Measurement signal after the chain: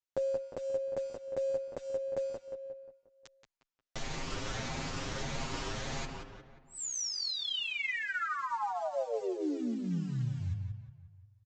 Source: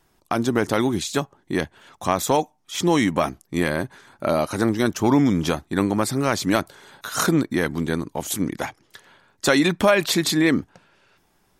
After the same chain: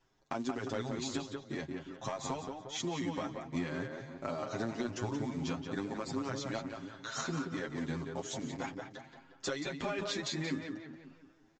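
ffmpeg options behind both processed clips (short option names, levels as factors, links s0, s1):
-filter_complex "[0:a]aecho=1:1:7.5:0.43,acompressor=threshold=0.0708:ratio=12,aresample=16000,acrusher=bits=6:mode=log:mix=0:aa=0.000001,aresample=44100,asplit=2[s0][s1];[s1]adelay=178,lowpass=f=2900:p=1,volume=0.596,asplit=2[s2][s3];[s3]adelay=178,lowpass=f=2900:p=1,volume=0.49,asplit=2[s4][s5];[s5]adelay=178,lowpass=f=2900:p=1,volume=0.49,asplit=2[s6][s7];[s7]adelay=178,lowpass=f=2900:p=1,volume=0.49,asplit=2[s8][s9];[s9]adelay=178,lowpass=f=2900:p=1,volume=0.49,asplit=2[s10][s11];[s11]adelay=178,lowpass=f=2900:p=1,volume=0.49[s12];[s0][s2][s4][s6][s8][s10][s12]amix=inputs=7:normalize=0,asplit=2[s13][s14];[s14]adelay=7.8,afreqshift=1.6[s15];[s13][s15]amix=inputs=2:normalize=1,volume=0.422"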